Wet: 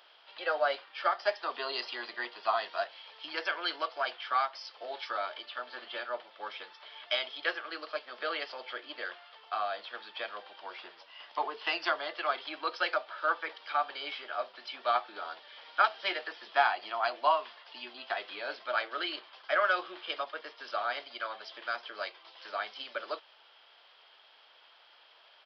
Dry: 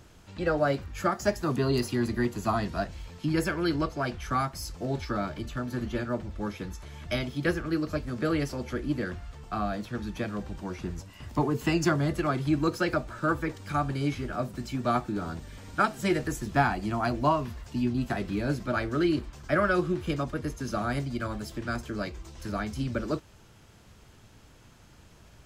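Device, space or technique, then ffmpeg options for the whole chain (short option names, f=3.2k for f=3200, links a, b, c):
musical greeting card: -filter_complex "[0:a]aresample=11025,aresample=44100,highpass=f=610:w=0.5412,highpass=f=610:w=1.3066,equalizer=f=3.2k:t=o:w=0.29:g=9.5,asettb=1/sr,asplit=3[a][b][c];[a]atrim=end=4.584[d];[b]atrim=start=4.58:end=5.59,asetpts=PTS-STARTPTS,afade=t=in:d=0.004:c=qsin,afade=t=out:st=1.006:d=0.004:c=qsin,highpass=f=200:w=0.5412,highpass=f=200:w=1.3066[e];[c]atrim=start=5.586[f];[d][e]acrossfade=d=0.004:c1=hsin:c2=qsin[g];[g][f]acrossfade=d=0.004:c1=qsin:c2=hsin"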